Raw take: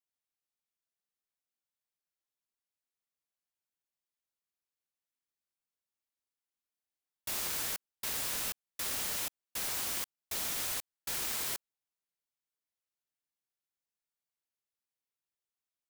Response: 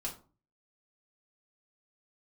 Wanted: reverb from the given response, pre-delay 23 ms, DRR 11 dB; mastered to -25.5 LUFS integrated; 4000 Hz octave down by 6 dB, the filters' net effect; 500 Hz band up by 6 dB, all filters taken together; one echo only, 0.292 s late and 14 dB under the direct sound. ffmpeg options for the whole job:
-filter_complex "[0:a]equalizer=f=500:t=o:g=7.5,equalizer=f=4k:t=o:g=-8,aecho=1:1:292:0.2,asplit=2[a][b];[1:a]atrim=start_sample=2205,adelay=23[c];[b][c]afir=irnorm=-1:irlink=0,volume=-11.5dB[d];[a][d]amix=inputs=2:normalize=0,volume=9dB"

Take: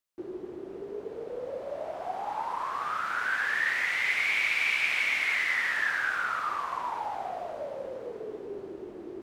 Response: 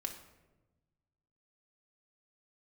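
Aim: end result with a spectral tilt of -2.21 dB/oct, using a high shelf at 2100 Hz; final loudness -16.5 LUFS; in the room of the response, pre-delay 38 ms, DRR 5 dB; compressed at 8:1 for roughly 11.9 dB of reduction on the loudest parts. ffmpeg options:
-filter_complex "[0:a]highshelf=f=2.1k:g=8.5,acompressor=threshold=-32dB:ratio=8,asplit=2[a][b];[1:a]atrim=start_sample=2205,adelay=38[c];[b][c]afir=irnorm=-1:irlink=0,volume=-4.5dB[d];[a][d]amix=inputs=2:normalize=0,volume=17.5dB"

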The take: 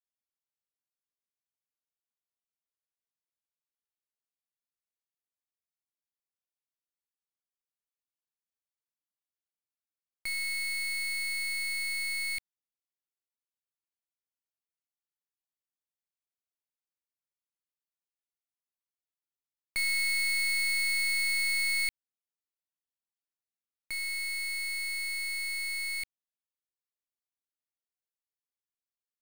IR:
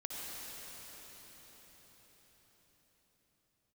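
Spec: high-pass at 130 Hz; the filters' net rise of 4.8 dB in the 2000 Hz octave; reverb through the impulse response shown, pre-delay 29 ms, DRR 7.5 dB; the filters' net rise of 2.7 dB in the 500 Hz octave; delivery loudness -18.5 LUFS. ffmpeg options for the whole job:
-filter_complex "[0:a]highpass=130,equalizer=f=500:t=o:g=3.5,equalizer=f=2k:t=o:g=5,asplit=2[a][b];[1:a]atrim=start_sample=2205,adelay=29[c];[b][c]afir=irnorm=-1:irlink=0,volume=-9dB[d];[a][d]amix=inputs=2:normalize=0,volume=6.5dB"

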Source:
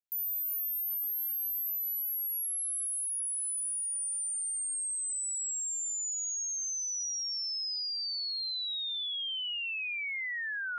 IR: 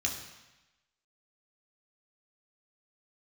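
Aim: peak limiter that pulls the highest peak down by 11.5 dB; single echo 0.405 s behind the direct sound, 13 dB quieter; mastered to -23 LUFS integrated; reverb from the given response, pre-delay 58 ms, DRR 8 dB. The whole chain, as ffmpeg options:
-filter_complex "[0:a]alimiter=level_in=18dB:limit=-24dB:level=0:latency=1,volume=-18dB,aecho=1:1:405:0.224,asplit=2[a][b];[1:a]atrim=start_sample=2205,adelay=58[c];[b][c]afir=irnorm=-1:irlink=0,volume=-13dB[d];[a][d]amix=inputs=2:normalize=0,volume=18dB"

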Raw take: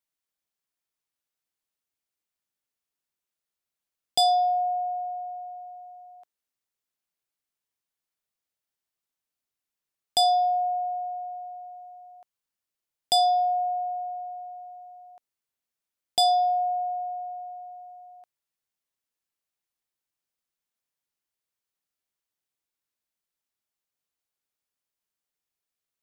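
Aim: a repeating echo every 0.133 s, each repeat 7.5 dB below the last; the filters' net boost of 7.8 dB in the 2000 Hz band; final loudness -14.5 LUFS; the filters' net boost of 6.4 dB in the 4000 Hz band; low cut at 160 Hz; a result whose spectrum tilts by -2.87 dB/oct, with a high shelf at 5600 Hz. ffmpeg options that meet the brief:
-af "highpass=160,equalizer=f=2k:t=o:g=8,equalizer=f=4k:t=o:g=8,highshelf=f=5.6k:g=-6,aecho=1:1:133|266|399|532|665:0.422|0.177|0.0744|0.0312|0.0131,volume=6.5dB"

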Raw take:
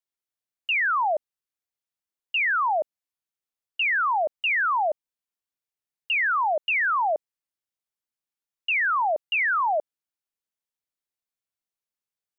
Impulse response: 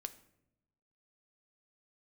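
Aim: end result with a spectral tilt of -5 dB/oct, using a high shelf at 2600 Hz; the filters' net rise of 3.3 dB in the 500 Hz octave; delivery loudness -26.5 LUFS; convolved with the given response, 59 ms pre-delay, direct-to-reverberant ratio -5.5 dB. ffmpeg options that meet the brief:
-filter_complex "[0:a]equalizer=f=500:t=o:g=4.5,highshelf=f=2.6k:g=5.5,asplit=2[a][b];[1:a]atrim=start_sample=2205,adelay=59[c];[b][c]afir=irnorm=-1:irlink=0,volume=8.5dB[d];[a][d]amix=inputs=2:normalize=0,volume=-11.5dB"

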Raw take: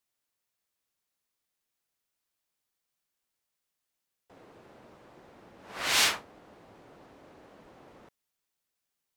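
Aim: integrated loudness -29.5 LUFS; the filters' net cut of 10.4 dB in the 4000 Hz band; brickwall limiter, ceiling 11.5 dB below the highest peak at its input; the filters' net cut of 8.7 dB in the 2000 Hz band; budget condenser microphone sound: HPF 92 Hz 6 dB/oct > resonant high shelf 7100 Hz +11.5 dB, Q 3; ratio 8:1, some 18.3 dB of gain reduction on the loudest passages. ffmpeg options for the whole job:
-af "equalizer=f=2k:t=o:g=-8.5,equalizer=f=4k:t=o:g=-5.5,acompressor=threshold=-44dB:ratio=8,alimiter=level_in=21.5dB:limit=-24dB:level=0:latency=1,volume=-21.5dB,highpass=f=92:p=1,highshelf=f=7.1k:t=q:w=3:g=11.5,volume=23dB"

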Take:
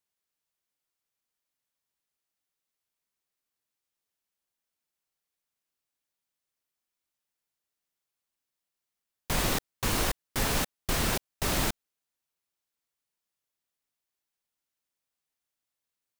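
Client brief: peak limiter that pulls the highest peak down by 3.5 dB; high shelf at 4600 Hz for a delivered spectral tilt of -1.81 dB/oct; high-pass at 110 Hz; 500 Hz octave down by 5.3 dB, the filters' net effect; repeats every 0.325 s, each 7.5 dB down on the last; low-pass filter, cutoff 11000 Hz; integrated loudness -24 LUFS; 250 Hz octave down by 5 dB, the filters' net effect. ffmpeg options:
-af "highpass=110,lowpass=11k,equalizer=f=250:t=o:g=-5,equalizer=f=500:t=o:g=-5.5,highshelf=f=4.6k:g=8,alimiter=limit=-19.5dB:level=0:latency=1,aecho=1:1:325|650|975|1300|1625:0.422|0.177|0.0744|0.0312|0.0131,volume=5.5dB"

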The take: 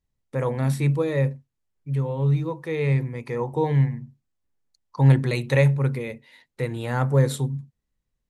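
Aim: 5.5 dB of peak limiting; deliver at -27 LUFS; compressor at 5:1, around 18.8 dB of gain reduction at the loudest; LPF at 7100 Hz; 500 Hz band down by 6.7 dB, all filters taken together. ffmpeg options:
-af "lowpass=7.1k,equalizer=f=500:t=o:g=-7.5,acompressor=threshold=-34dB:ratio=5,volume=11.5dB,alimiter=limit=-17dB:level=0:latency=1"

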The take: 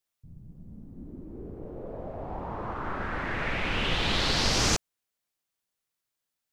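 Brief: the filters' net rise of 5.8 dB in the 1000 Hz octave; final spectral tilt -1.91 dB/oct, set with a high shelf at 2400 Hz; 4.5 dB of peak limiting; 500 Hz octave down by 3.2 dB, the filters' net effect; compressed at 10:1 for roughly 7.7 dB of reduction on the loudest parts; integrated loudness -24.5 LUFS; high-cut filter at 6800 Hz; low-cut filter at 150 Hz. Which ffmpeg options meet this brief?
-af "highpass=150,lowpass=6.8k,equalizer=f=500:t=o:g=-7,equalizer=f=1k:t=o:g=7.5,highshelf=f=2.4k:g=8,acompressor=threshold=-26dB:ratio=10,volume=7dB,alimiter=limit=-15dB:level=0:latency=1"

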